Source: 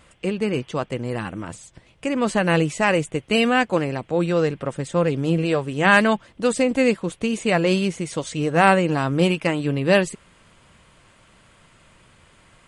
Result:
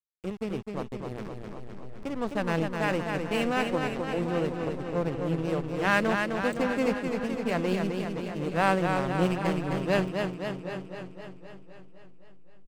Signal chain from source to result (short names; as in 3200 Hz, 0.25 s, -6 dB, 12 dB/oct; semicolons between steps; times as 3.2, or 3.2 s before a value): backlash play -18.5 dBFS; outdoor echo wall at 130 m, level -13 dB; warbling echo 0.258 s, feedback 65%, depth 68 cents, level -5 dB; gain -8.5 dB